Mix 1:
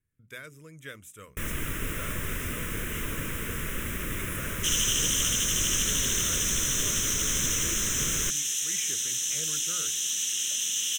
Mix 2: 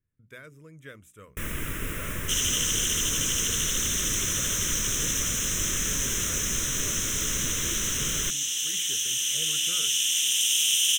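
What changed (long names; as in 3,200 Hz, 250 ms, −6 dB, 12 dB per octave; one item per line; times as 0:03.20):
speech: add high-shelf EQ 2,100 Hz −9 dB
second sound: entry −2.35 s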